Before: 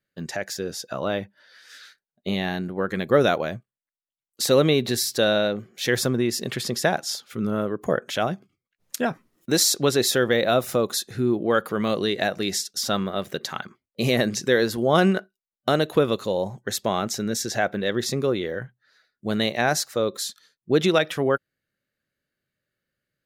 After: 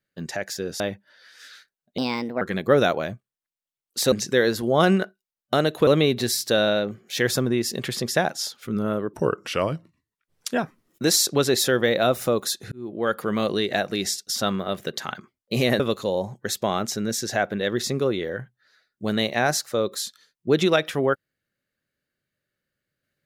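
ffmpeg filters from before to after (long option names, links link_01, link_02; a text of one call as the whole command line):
ffmpeg -i in.wav -filter_complex "[0:a]asplit=10[link_01][link_02][link_03][link_04][link_05][link_06][link_07][link_08][link_09][link_10];[link_01]atrim=end=0.802[link_11];[link_02]atrim=start=1.098:end=2.284[link_12];[link_03]atrim=start=2.28:end=2.84,asetpts=PTS-STARTPTS,asetrate=57330,aresample=44100[link_13];[link_04]atrim=start=2.836:end=4.552[link_14];[link_05]atrim=start=14.268:end=16.022[link_15];[link_06]atrim=start=4.548:end=7.814[link_16];[link_07]atrim=start=7.81:end=8.98,asetpts=PTS-STARTPTS,asetrate=37485,aresample=44100,atrim=end_sample=60702,asetpts=PTS-STARTPTS[link_17];[link_08]atrim=start=8.976:end=11.19,asetpts=PTS-STARTPTS,afade=type=out:start_time=2.21:duration=0.004:curve=hsin[link_18];[link_09]atrim=start=11.19:end=14.272,asetpts=PTS-STARTPTS,afade=type=in:duration=0.49[link_19];[link_10]atrim=start=16.018[link_20];[link_11][link_12]acrossfade=duration=0.004:curve1=hsin:curve2=hsin[link_21];[link_21][link_13]acrossfade=duration=0.004:curve1=hsin:curve2=hsin[link_22];[link_22][link_14]acrossfade=duration=0.004:curve1=hsin:curve2=hsin[link_23];[link_23][link_15]acrossfade=duration=0.004:curve1=hsin:curve2=hsin[link_24];[link_24][link_16]acrossfade=duration=0.004:curve1=hsin:curve2=hsin[link_25];[link_25][link_17]acrossfade=duration=0.004:curve1=hsin:curve2=hsin[link_26];[link_18][link_19]concat=n=2:v=0:a=1[link_27];[link_26][link_27]acrossfade=duration=0.004:curve1=hsin:curve2=hsin[link_28];[link_28][link_20]acrossfade=duration=0.004:curve1=hsin:curve2=hsin" out.wav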